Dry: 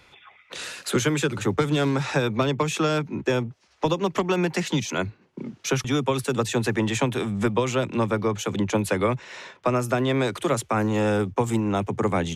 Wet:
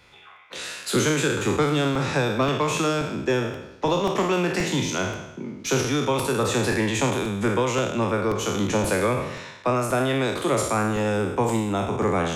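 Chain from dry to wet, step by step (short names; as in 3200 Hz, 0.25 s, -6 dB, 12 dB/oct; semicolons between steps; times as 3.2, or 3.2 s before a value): spectral trails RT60 0.90 s; de-hum 157.6 Hz, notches 38; crackling interface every 0.53 s, samples 128, repeat, from 0.36; gain -1.5 dB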